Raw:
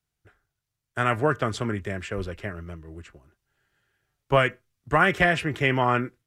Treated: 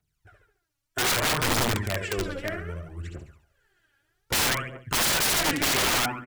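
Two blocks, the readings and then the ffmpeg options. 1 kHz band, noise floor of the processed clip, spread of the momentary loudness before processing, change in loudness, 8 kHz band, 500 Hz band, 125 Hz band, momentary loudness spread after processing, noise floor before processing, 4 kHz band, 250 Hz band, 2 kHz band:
-3.5 dB, -79 dBFS, 16 LU, 0.0 dB, +20.5 dB, -5.5 dB, -3.5 dB, 16 LU, -84 dBFS, +10.0 dB, -3.0 dB, -2.0 dB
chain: -af "aecho=1:1:71|142|213|284|355|426:0.668|0.307|0.141|0.0651|0.0299|0.0138,aphaser=in_gain=1:out_gain=1:delay=3.7:decay=0.7:speed=0.63:type=triangular,aeval=exprs='(mod(7.08*val(0)+1,2)-1)/7.08':c=same,volume=-1.5dB"

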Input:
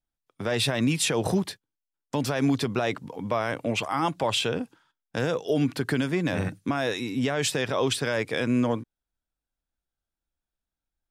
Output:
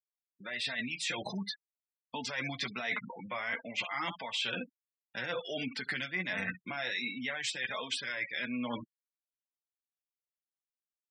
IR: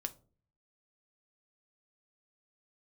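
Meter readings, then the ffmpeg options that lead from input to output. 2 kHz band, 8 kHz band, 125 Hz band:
-2.5 dB, -12.0 dB, -18.5 dB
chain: -filter_complex "[0:a]crystalizer=i=9:c=0,dynaudnorm=f=310:g=7:m=11.5dB,asplit=2[a][b];[b]aecho=0:1:16|71:0.376|0.178[c];[a][c]amix=inputs=2:normalize=0,flanger=delay=4.4:depth=1.4:regen=21:speed=1.4:shape=sinusoidal,highpass=110,lowpass=4.1k,afftfilt=real='re*gte(hypot(re,im),0.0282)':imag='im*gte(hypot(re,im),0.0282)':win_size=1024:overlap=0.75,equalizer=f=160:t=o:w=0.33:g=-7,equalizer=f=400:t=o:w=0.33:g=-11,equalizer=f=2k:t=o:w=0.33:g=12,areverse,acompressor=threshold=-33dB:ratio=5,areverse,volume=-1dB"

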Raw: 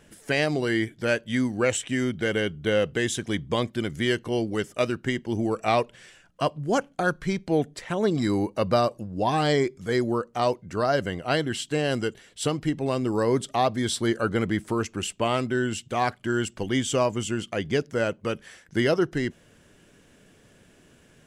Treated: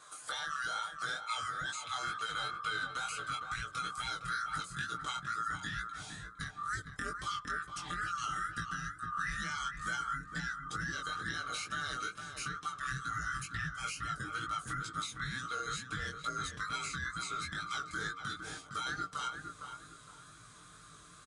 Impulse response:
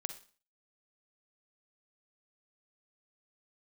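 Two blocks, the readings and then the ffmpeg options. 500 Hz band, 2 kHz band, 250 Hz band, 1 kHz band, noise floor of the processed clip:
-29.0 dB, -5.5 dB, -24.0 dB, -7.5 dB, -56 dBFS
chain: -filter_complex "[0:a]afftfilt=real='real(if(lt(b,960),b+48*(1-2*mod(floor(b/48),2)),b),0)':imag='imag(if(lt(b,960),b+48*(1-2*mod(floor(b/48),2)),b),0)':win_size=2048:overlap=0.75,highpass=58,aemphasis=mode=production:type=50fm,aresample=22050,aresample=44100,aecho=1:1:6.6:0.6,asubboost=boost=12:cutoff=170,acompressor=threshold=-22dB:ratio=8,alimiter=limit=-20dB:level=0:latency=1:release=212,acrossover=split=1300|4200[a][b][c];[a]acompressor=threshold=-41dB:ratio=4[d];[b]acompressor=threshold=-35dB:ratio=4[e];[c]acompressor=threshold=-45dB:ratio=4[f];[d][e][f]amix=inputs=3:normalize=0,bandreject=f=92.94:t=h:w=4,bandreject=f=185.88:t=h:w=4,bandreject=f=278.82:t=h:w=4,bandreject=f=371.76:t=h:w=4,bandreject=f=464.7:t=h:w=4,bandreject=f=557.64:t=h:w=4,bandreject=f=650.58:t=h:w=4,bandreject=f=743.52:t=h:w=4,bandreject=f=836.46:t=h:w=4,asplit=2[g][h];[h]adelay=459,lowpass=f=1.4k:p=1,volume=-5dB,asplit=2[i][j];[j]adelay=459,lowpass=f=1.4k:p=1,volume=0.35,asplit=2[k][l];[l]adelay=459,lowpass=f=1.4k:p=1,volume=0.35,asplit=2[m][n];[n]adelay=459,lowpass=f=1.4k:p=1,volume=0.35[o];[i][k][m][o]amix=inputs=4:normalize=0[p];[g][p]amix=inputs=2:normalize=0,flanger=delay=17.5:depth=5.6:speed=2.2"

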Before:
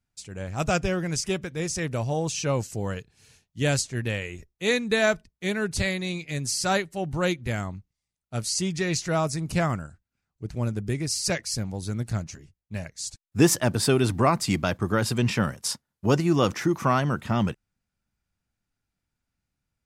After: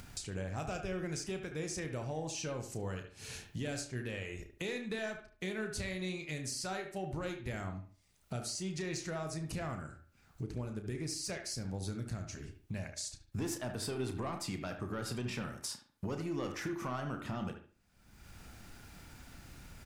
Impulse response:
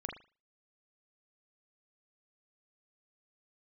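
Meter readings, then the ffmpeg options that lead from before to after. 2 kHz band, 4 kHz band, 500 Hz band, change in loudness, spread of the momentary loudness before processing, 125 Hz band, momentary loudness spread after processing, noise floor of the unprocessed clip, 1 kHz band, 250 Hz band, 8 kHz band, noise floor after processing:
-13.5 dB, -12.5 dB, -13.5 dB, -13.5 dB, 12 LU, -13.0 dB, 11 LU, -85 dBFS, -15.0 dB, -13.5 dB, -12.0 dB, -68 dBFS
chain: -filter_complex "[0:a]bass=f=250:g=-4,treble=f=4k:g=-1,asoftclip=type=tanh:threshold=-16dB,acompressor=mode=upward:threshold=-34dB:ratio=2.5,alimiter=limit=-21.5dB:level=0:latency=1:release=338,acompressor=threshold=-42dB:ratio=4,lowshelf=f=330:g=3,asplit=2[a][b];[b]adelay=73,lowpass=f=2.7k:p=1,volume=-11.5dB,asplit=2[c][d];[d]adelay=73,lowpass=f=2.7k:p=1,volume=0.32,asplit=2[e][f];[f]adelay=73,lowpass=f=2.7k:p=1,volume=0.32[g];[a][c][e][g]amix=inputs=4:normalize=0,asplit=2[h][i];[1:a]atrim=start_sample=2205,adelay=32[j];[i][j]afir=irnorm=-1:irlink=0,volume=-6.5dB[k];[h][k]amix=inputs=2:normalize=0,volume=1.5dB"

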